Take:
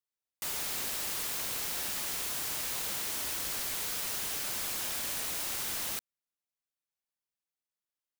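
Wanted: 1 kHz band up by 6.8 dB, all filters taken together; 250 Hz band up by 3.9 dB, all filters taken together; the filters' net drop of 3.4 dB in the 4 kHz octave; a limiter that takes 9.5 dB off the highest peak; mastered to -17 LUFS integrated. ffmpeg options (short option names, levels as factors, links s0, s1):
-af "equalizer=f=250:t=o:g=4.5,equalizer=f=1000:t=o:g=8.5,equalizer=f=4000:t=o:g=-5,volume=11.9,alimiter=limit=0.316:level=0:latency=1"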